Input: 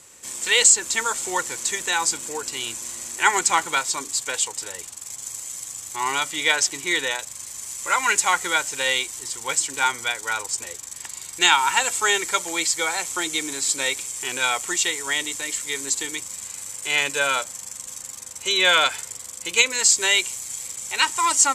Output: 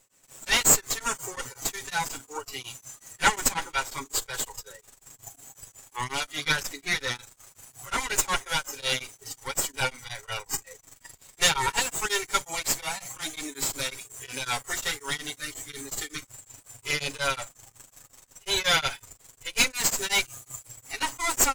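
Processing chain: minimum comb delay 7.3 ms; spectral noise reduction 11 dB; beating tremolo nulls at 5.5 Hz; gain -1 dB

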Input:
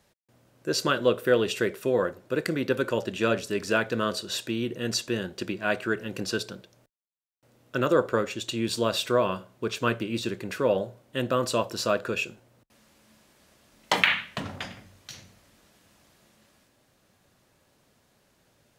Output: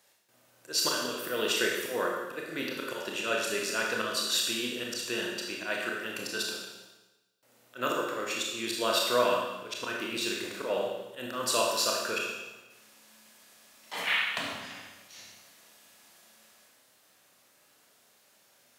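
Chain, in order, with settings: HPF 840 Hz 6 dB/oct; high shelf 8600 Hz +6.5 dB; auto swell 0.124 s; Schroeder reverb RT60 1.1 s, combs from 25 ms, DRR -1.5 dB

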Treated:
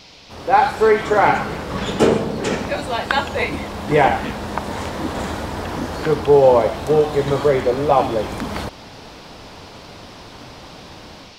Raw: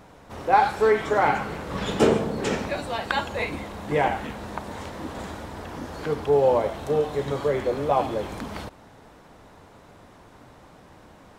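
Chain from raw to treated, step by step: AGC gain up to 10.5 dB; band noise 2100–5500 Hz -46 dBFS

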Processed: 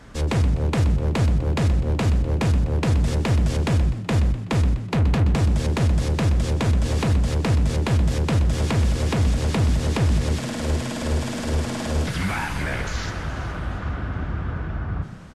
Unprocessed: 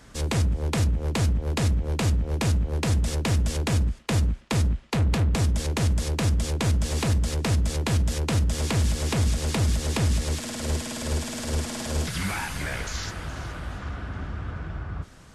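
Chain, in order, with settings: high shelf 4200 Hz -11 dB; in parallel at -1 dB: limiter -22.5 dBFS, peak gain reduction 7.5 dB; on the sum: frequency-shifting echo 0.125 s, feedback 43%, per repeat +52 Hz, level -12 dB

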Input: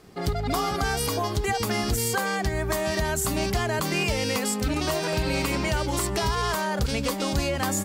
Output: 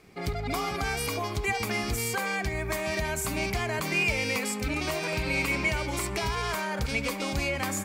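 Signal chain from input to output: bell 2300 Hz +13.5 dB 0.26 oct; narrowing echo 70 ms, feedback 74%, band-pass 1300 Hz, level -12.5 dB; gain -5 dB

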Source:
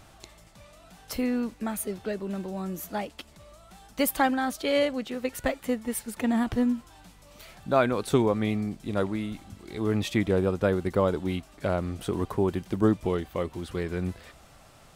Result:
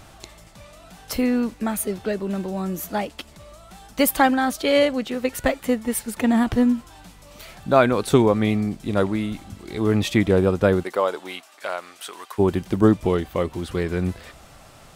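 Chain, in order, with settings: 10.82–12.38 HPF 500 Hz -> 1500 Hz 12 dB/oct; gain +6.5 dB

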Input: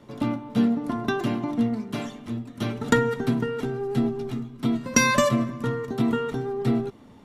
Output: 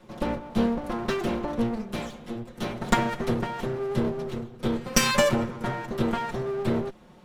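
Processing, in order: minimum comb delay 5.5 ms

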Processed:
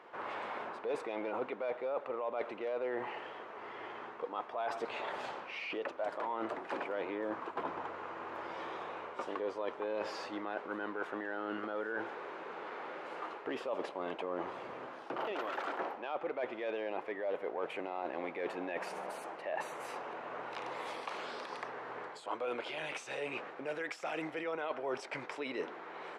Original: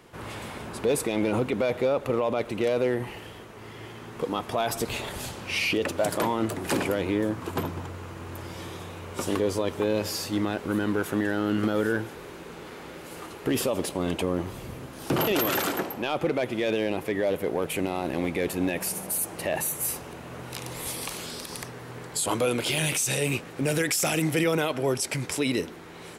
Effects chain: HPF 800 Hz 12 dB/oct; tape spacing loss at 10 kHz 29 dB; reverse; compressor 6:1, threshold -42 dBFS, peak gain reduction 13 dB; reverse; high shelf 2100 Hz -11.5 dB; gain +9 dB

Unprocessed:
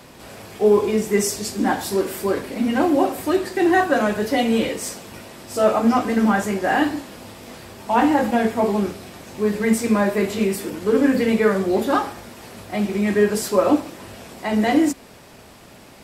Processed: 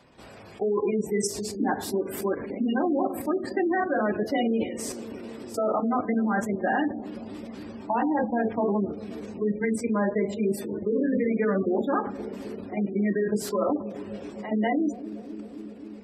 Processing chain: level quantiser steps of 11 dB; spectral gate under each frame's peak -20 dB strong; analogue delay 0.263 s, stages 1024, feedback 84%, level -14 dB; gain -2 dB

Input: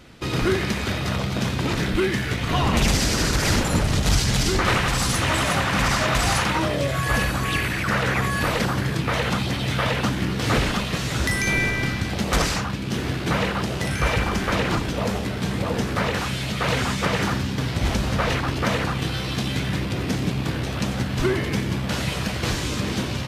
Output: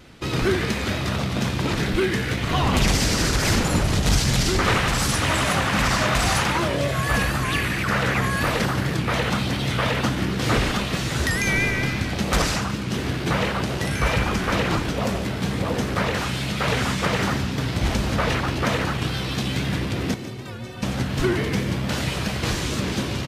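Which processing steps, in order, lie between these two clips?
vibrato 4.4 Hz 44 cents; 20.14–20.83 metallic resonator 110 Hz, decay 0.24 s, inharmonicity 0.03; frequency-shifting echo 0.145 s, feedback 51%, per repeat +69 Hz, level -13.5 dB; record warp 78 rpm, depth 100 cents

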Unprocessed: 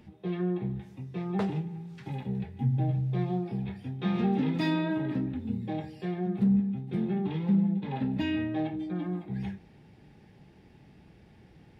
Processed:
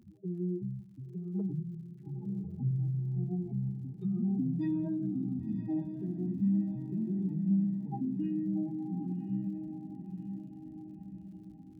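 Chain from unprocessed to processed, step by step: spectral contrast raised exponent 2.8; diffused feedback echo 1.049 s, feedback 54%, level -8 dB; crackle 77/s -56 dBFS; gain -4 dB

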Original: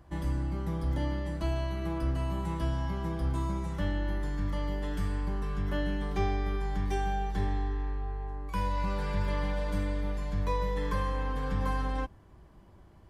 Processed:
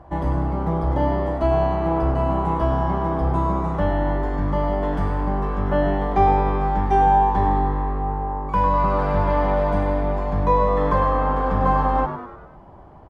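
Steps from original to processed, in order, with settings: LPF 1500 Hz 6 dB/oct; bell 770 Hz +13 dB 1.3 oct; on a send: frequency-shifting echo 0.1 s, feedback 50%, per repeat +100 Hz, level -10.5 dB; on the sum: gain +7.5 dB

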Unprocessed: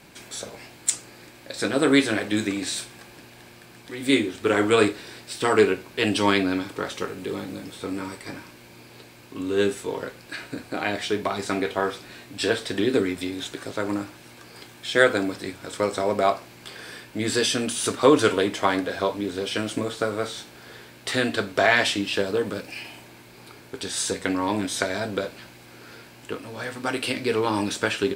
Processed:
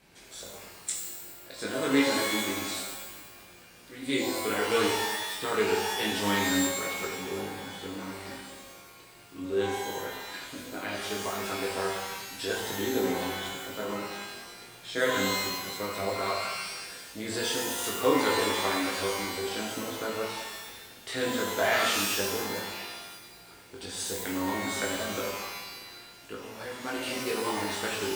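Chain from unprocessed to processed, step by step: chorus voices 6, 0.58 Hz, delay 21 ms, depth 2.8 ms; shimmer reverb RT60 1.1 s, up +12 st, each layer -2 dB, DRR 1 dB; gain -7 dB

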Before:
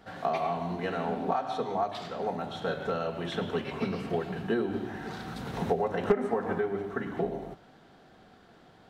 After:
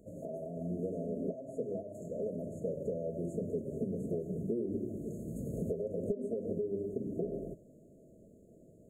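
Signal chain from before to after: compressor 5:1, threshold -31 dBFS, peak gain reduction 12 dB; brick-wall FIR band-stop 670–6400 Hz

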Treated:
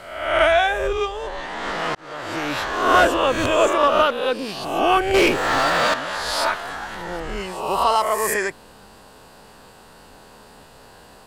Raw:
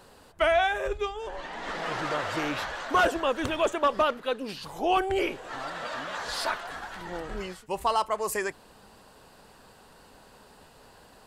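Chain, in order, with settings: spectral swells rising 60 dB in 0.89 s; 1.95–2.61 fade in; 5.14–5.94 sample leveller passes 3; gain +5 dB

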